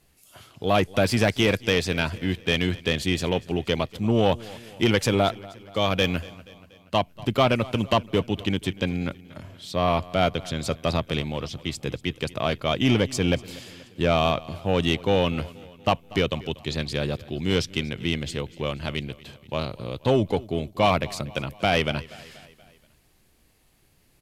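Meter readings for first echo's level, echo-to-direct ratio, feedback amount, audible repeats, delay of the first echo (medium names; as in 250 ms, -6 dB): -20.5 dB, -19.0 dB, 55%, 3, 239 ms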